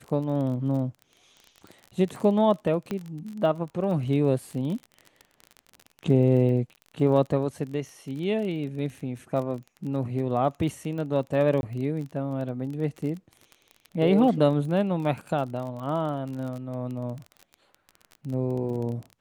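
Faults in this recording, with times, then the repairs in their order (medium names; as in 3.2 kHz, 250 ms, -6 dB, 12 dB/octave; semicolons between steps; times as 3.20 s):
crackle 27 per s -33 dBFS
2.91 s: pop -17 dBFS
11.61–11.63 s: dropout 21 ms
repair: de-click; interpolate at 11.61 s, 21 ms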